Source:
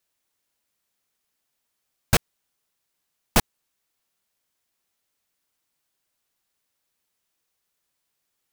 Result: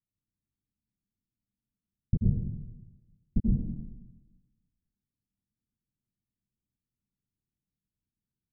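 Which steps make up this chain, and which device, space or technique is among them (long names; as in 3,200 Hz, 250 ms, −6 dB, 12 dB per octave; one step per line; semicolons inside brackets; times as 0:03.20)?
0:02.15–0:03.39: notch filter 1,400 Hz, Q 5.3
club heard from the street (brickwall limiter −8.5 dBFS, peak gain reduction 4 dB; low-pass filter 240 Hz 24 dB per octave; convolution reverb RT60 1.1 s, pre-delay 79 ms, DRR −3 dB)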